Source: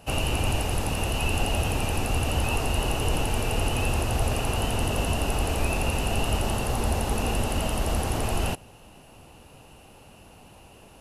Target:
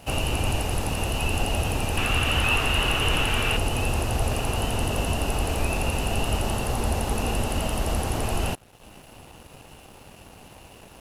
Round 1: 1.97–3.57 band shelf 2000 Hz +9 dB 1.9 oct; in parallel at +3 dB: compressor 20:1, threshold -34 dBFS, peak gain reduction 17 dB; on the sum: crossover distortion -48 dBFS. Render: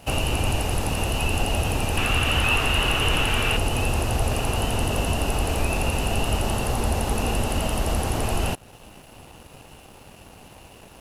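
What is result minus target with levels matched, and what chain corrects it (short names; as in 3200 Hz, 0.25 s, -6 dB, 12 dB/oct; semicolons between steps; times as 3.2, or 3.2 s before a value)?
compressor: peak gain reduction -10.5 dB
1.97–3.57 band shelf 2000 Hz +9 dB 1.9 oct; in parallel at +3 dB: compressor 20:1, threshold -45 dBFS, peak gain reduction 27 dB; on the sum: crossover distortion -48 dBFS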